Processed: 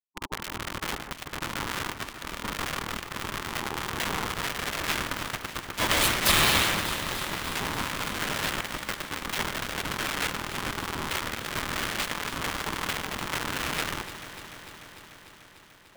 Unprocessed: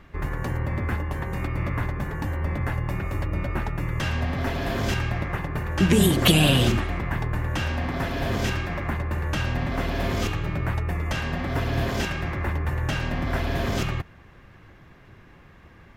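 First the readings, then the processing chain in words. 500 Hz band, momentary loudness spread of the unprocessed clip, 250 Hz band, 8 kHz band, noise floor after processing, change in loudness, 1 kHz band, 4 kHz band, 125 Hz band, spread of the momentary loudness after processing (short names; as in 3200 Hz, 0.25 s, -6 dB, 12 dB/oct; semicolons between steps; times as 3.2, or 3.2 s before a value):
-6.5 dB, 10 LU, -10.5 dB, +4.5 dB, -51 dBFS, -3.0 dB, +1.0 dB, +1.5 dB, -15.0 dB, 13 LU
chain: level-crossing sampler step -20.5 dBFS; bell 2600 Hz +4.5 dB 0.47 oct; spectral gate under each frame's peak -15 dB weak; ring modulator 610 Hz; echo with dull and thin repeats by turns 0.148 s, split 2200 Hz, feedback 86%, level -10.5 dB; gain +6 dB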